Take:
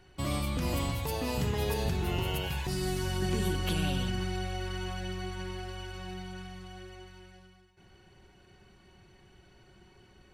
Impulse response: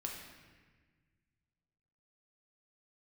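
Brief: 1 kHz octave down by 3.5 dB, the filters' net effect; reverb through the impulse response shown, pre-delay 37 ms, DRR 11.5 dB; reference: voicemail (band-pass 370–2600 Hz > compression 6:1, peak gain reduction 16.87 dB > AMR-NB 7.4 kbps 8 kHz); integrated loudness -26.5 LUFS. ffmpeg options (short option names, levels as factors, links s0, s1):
-filter_complex "[0:a]equalizer=f=1000:t=o:g=-4.5,asplit=2[s0][s1];[1:a]atrim=start_sample=2205,adelay=37[s2];[s1][s2]afir=irnorm=-1:irlink=0,volume=0.282[s3];[s0][s3]amix=inputs=2:normalize=0,highpass=370,lowpass=2600,acompressor=threshold=0.00282:ratio=6,volume=26.6" -ar 8000 -c:a libopencore_amrnb -b:a 7400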